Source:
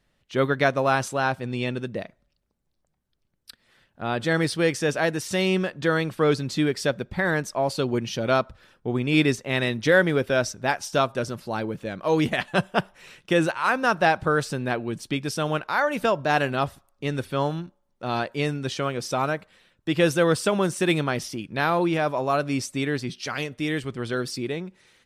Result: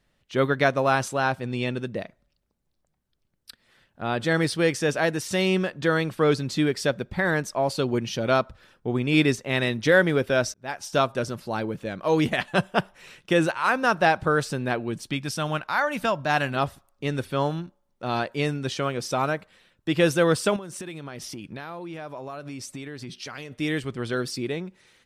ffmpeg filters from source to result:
-filter_complex "[0:a]asettb=1/sr,asplit=3[a][b][c];[a]atrim=end=15.114[d];[b]atrim=start=15.11:end=16.56,asetpts=PTS-STARTPTS,afade=t=in:d=0.004:c=qsin,afade=t=out:st=1.446:d=0.004:c=qsin,equalizer=f=420:t=o:w=0.77:g=-8[e];[c]atrim=start=16.556[f];[d][e]acrossfade=d=0.004:c1=hsin:c2=qsin[g];[g][f]acrossfade=d=0.004:c1=qsin:c2=hsin,asettb=1/sr,asplit=3[h][i][j];[h]atrim=end=20.564[k];[i]atrim=start=20.56:end=23.53,asetpts=PTS-STARTPTS,afade=t=in:d=0.004:c=qsin,afade=t=out:st=2.966:d=0.004:c=qsin,acompressor=threshold=-32dB:ratio=16:attack=3.2:release=140:knee=1:detection=peak[l];[j]atrim=start=23.526[m];[k][l]acrossfade=d=0.004:c1=hsin:c2=qsin[n];[n][m]acrossfade=d=0.004:c1=qsin:c2=hsin,asplit=2[o][p];[o]atrim=end=10.54,asetpts=PTS-STARTPTS,afade=t=out:st=10.536:d=0.004:c=hsin[q];[p]atrim=start=10.54,asetpts=PTS-STARTPTS,afade=t=in:d=0.43[r];[q][r]concat=n=2:v=0:a=1"

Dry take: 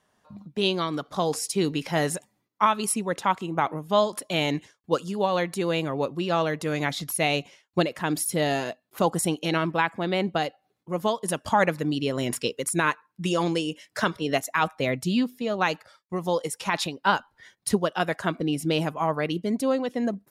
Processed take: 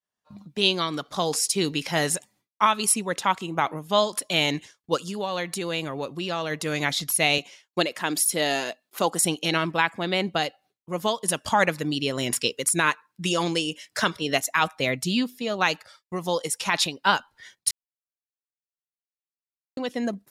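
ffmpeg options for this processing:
-filter_complex "[0:a]asplit=3[a][b][c];[a]afade=t=out:st=4.96:d=0.02[d];[b]acompressor=threshold=-27dB:ratio=2:attack=3.2:release=140:knee=1:detection=peak,afade=t=in:st=4.96:d=0.02,afade=t=out:st=6.5:d=0.02[e];[c]afade=t=in:st=6.5:d=0.02[f];[d][e][f]amix=inputs=3:normalize=0,asettb=1/sr,asplit=3[g][h][i];[g]atrim=end=7.384[j];[h]atrim=start=7.38:end=9.24,asetpts=PTS-STARTPTS,afade=t=in:d=0.004:c=qsin,afade=t=out:st=1.856:d=0.004:c=qsin,highpass=220[k];[i]atrim=start=9.236[l];[j][k]acrossfade=d=0.004:c1=hsin:c2=qsin[m];[m][l]acrossfade=d=0.004:c1=qsin:c2=hsin,asplit=3[n][o][p];[n]atrim=end=17.71,asetpts=PTS-STARTPTS,afade=t=out:st=17.706:d=0.004:c=hsin[q];[o]atrim=start=17.71:end=19.77,asetpts=PTS-STARTPTS,volume=0[r];[p]atrim=start=19.77,asetpts=PTS-STARTPTS,afade=t=in:d=0.004:c=hsin[s];[q][r][s]concat=n=3:v=0:a=1,highshelf=f=2.2k:g=11.5,agate=range=-33dB:threshold=-50dB:ratio=3:detection=peak,highshelf=f=8.9k:g=-6.5,volume=-1.5dB"

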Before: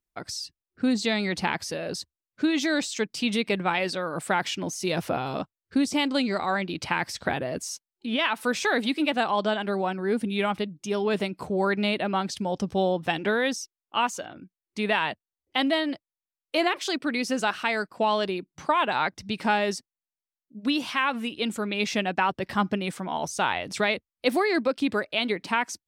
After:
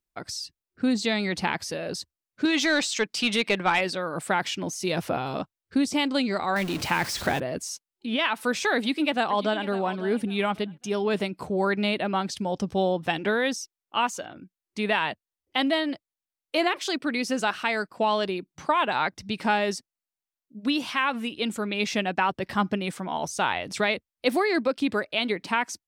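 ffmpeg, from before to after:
-filter_complex "[0:a]asettb=1/sr,asplit=3[a][b][c];[a]atrim=end=2.454[d];[b]atrim=start=2.45:end=3.81,asetpts=PTS-STARTPTS,afade=t=in:d=0.004:c=qsin,afade=t=out:st=1.356:d=0.004:c=qsin,asplit=2[e][f];[f]highpass=f=720:p=1,volume=11dB,asoftclip=type=tanh:threshold=-11.5dB[g];[e][g]amix=inputs=2:normalize=0,lowpass=f=6.3k:p=1,volume=-6dB[h];[c]atrim=start=3.806[i];[d][h]acrossfade=d=0.004:c1=hsin:c2=qsin[j];[j][i]acrossfade=d=0.004:c1=qsin:c2=hsin,asettb=1/sr,asplit=3[k][l][m];[k]atrim=end=6.564[n];[l]atrim=start=6.56:end=7.4,asetpts=PTS-STARTPTS,afade=t=in:d=0.004:c=qsin,afade=t=out:st=0.836:d=0.004:c=qsin,aeval=exprs='val(0)+0.5*0.0299*sgn(val(0))':c=same[o];[m]atrim=start=7.396[p];[n][o]acrossfade=d=0.004:c1=hsin:c2=qsin[q];[q][p]acrossfade=d=0.004:c1=qsin:c2=hsin,asplit=2[r][s];[s]afade=t=in:st=8.75:d=0.01,afade=t=out:st=9.67:d=0.01,aecho=0:1:550|1100|1650:0.177828|0.044457|0.0111142[t];[r][t]amix=inputs=2:normalize=0"

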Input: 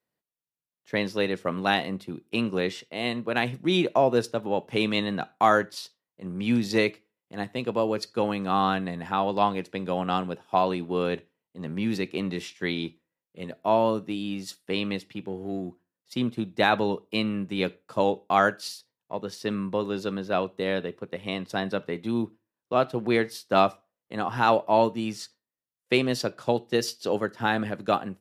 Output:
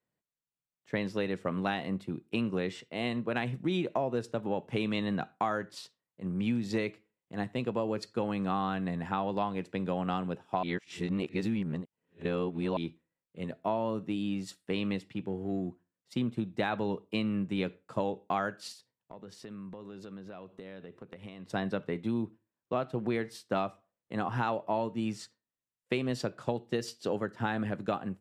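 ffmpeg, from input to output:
-filter_complex "[0:a]asettb=1/sr,asplit=3[a][b][c];[a]atrim=end=18.724[d];[b]atrim=start=18.72:end=21.48,asetpts=PTS-STARTPTS,afade=t=in:d=0.004:c=qsin,afade=t=out:st=2.756:d=0.004:c=qsin,acompressor=threshold=-40dB:ratio=8:attack=3.2:release=140:knee=1:detection=peak[e];[c]atrim=start=21.476[f];[d][e]acrossfade=d=0.004:c1=hsin:c2=qsin[g];[g][f]acrossfade=d=0.004:c1=qsin:c2=hsin,asplit=3[h][i][j];[h]atrim=end=10.632[k];[i]atrim=start=10.628:end=12.772,asetpts=PTS-STARTPTS,areverse[l];[j]atrim=start=12.768[m];[k][l]acrossfade=d=0.004:c1=hsin:c2=hsin[n];[n][m]acrossfade=d=0.004:c1=hsin:c2=hsin,bass=f=250:g=5,treble=f=4k:g=-10,acompressor=threshold=-24dB:ratio=6,equalizer=f=7.8k:t=o:w=0.6:g=8.5,volume=-3dB"

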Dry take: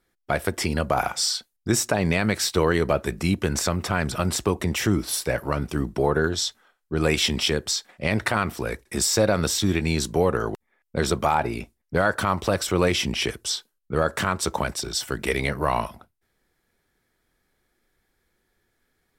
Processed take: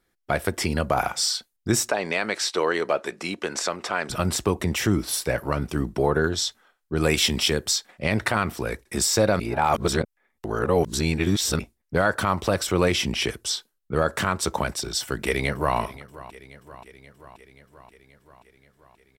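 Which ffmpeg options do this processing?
-filter_complex "[0:a]asettb=1/sr,asplit=3[a][b][c];[a]atrim=end=1.894[d];[b]atrim=start=1.89:end=4.1,asetpts=PTS-STARTPTS,afade=t=in:d=0.004:c=qsin,afade=t=out:st=2.206:d=0.004:c=qsin,highpass=390,lowpass=7.5k[e];[c]atrim=start=4.096[f];[d][e]acrossfade=d=0.004:c1=hsin:c2=qsin[g];[g][f]acrossfade=d=0.004:c1=qsin:c2=hsin,asettb=1/sr,asplit=3[h][i][j];[h]atrim=end=6.944[k];[i]atrim=start=6.94:end=7.78,asetpts=PTS-STARTPTS,afade=t=in:d=0.004:c=qsin,afade=t=out:st=0.836:d=0.004:c=qsin,highshelf=f=8.7k:g=7.5[l];[j]atrim=start=7.776[m];[k][l]acrossfade=d=0.004:c1=hsin:c2=qsin[n];[n][m]acrossfade=d=0.004:c1=qsin:c2=hsin,asplit=2[o][p];[p]afade=t=in:st=15.02:d=0.01,afade=t=out:st=15.77:d=0.01,aecho=0:1:530|1060|1590|2120|2650|3180|3710|4240:0.125893|0.0881248|0.0616873|0.0431811|0.0302268|0.0211588|0.0148111|0.0103678[q];[o][q]amix=inputs=2:normalize=0,asplit=3[r][s][t];[r]atrim=end=9.402[u];[s]atrim=start=9.398:end=11.592,asetpts=PTS-STARTPTS,areverse[v];[t]atrim=start=11.588[w];[u][v]acrossfade=d=0.004:c1=hsin:c2=hsin[x];[x][w]acrossfade=d=0.004:c1=hsin:c2=hsin"

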